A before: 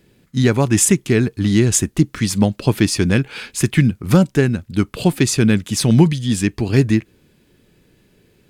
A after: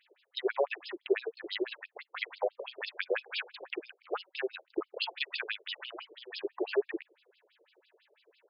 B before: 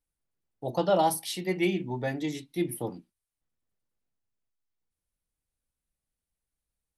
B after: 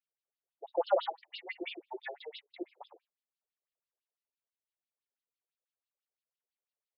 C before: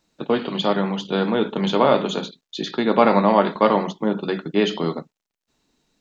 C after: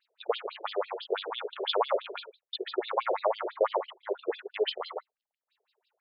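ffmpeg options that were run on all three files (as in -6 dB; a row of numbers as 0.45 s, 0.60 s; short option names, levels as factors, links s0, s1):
-filter_complex "[0:a]acrossover=split=140[s0][s1];[s1]acompressor=threshold=0.141:ratio=6[s2];[s0][s2]amix=inputs=2:normalize=0,afftfilt=real='re*between(b*sr/1024,480*pow(3800/480,0.5+0.5*sin(2*PI*6*pts/sr))/1.41,480*pow(3800/480,0.5+0.5*sin(2*PI*6*pts/sr))*1.41)':imag='im*between(b*sr/1024,480*pow(3800/480,0.5+0.5*sin(2*PI*6*pts/sr))/1.41,480*pow(3800/480,0.5+0.5*sin(2*PI*6*pts/sr))*1.41)':win_size=1024:overlap=0.75"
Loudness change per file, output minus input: -19.5 LU, -8.0 LU, -12.0 LU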